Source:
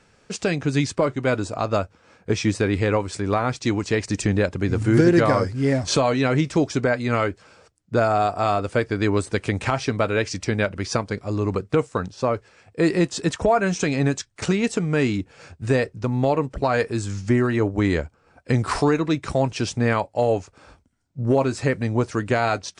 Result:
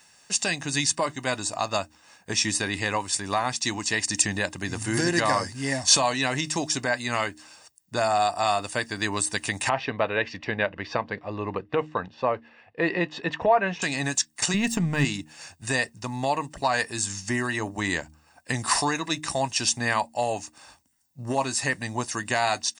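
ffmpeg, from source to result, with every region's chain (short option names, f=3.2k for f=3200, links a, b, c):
-filter_complex "[0:a]asettb=1/sr,asplit=3[a][b][c];[a]atrim=end=9.694[d];[b]atrim=start=9.69:end=13.82,asetpts=PTS-STARTPTS,afade=t=in:d=0.004:c=qsin,afade=t=out:st=4.126:d=0.004:c=qsin,lowpass=f=3k:w=0.5412,lowpass=f=3k:w=1.3066,equalizer=f=480:w=2.6:g=8.5[e];[c]atrim=start=13.816[f];[d][e]acrossfade=d=0.004:c1=hsin:c2=qsin[g];[g][f]acrossfade=d=0.004:c1=qsin:c2=hsin,asettb=1/sr,asplit=3[h][i][j];[h]atrim=end=14.544[k];[i]atrim=start=14.54:end=15.05,asetpts=PTS-STARTPTS,afade=t=in:d=0.004:c=qsin,afade=t=out:st=0.506:d=0.004:c=qsin,aeval=exprs='if(lt(val(0),0),0.708*val(0),val(0))':c=same,bass=f=250:g=15,treble=f=4k:g=-8[l];[j]atrim=start=15.046[m];[k][l]acrossfade=d=0.004:c1=hsin:c2=qsin[n];[n][m]acrossfade=d=0.004:c1=qsin:c2=hsin,aemphasis=mode=production:type=riaa,aecho=1:1:1.1:0.59,bandreject=f=76.88:t=h:w=4,bandreject=f=153.76:t=h:w=4,bandreject=f=230.64:t=h:w=4,bandreject=f=307.52:t=h:w=4,volume=-2.5dB"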